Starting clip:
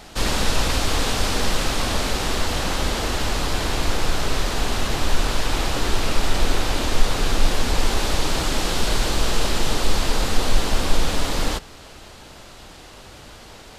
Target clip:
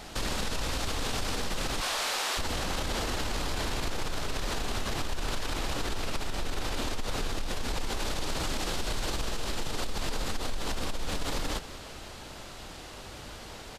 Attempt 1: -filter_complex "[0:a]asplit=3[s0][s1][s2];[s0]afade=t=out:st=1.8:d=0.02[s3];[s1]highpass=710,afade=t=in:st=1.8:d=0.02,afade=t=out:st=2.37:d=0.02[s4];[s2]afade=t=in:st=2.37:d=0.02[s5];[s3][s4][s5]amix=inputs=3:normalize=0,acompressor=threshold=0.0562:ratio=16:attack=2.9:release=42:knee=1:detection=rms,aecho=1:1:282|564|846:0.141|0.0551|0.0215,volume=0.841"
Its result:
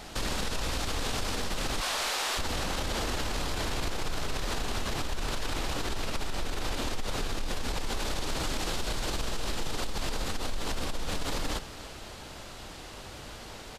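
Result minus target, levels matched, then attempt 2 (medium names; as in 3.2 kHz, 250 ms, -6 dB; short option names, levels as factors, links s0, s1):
echo 90 ms late
-filter_complex "[0:a]asplit=3[s0][s1][s2];[s0]afade=t=out:st=1.8:d=0.02[s3];[s1]highpass=710,afade=t=in:st=1.8:d=0.02,afade=t=out:st=2.37:d=0.02[s4];[s2]afade=t=in:st=2.37:d=0.02[s5];[s3][s4][s5]amix=inputs=3:normalize=0,acompressor=threshold=0.0562:ratio=16:attack=2.9:release=42:knee=1:detection=rms,aecho=1:1:192|384|576:0.141|0.0551|0.0215,volume=0.841"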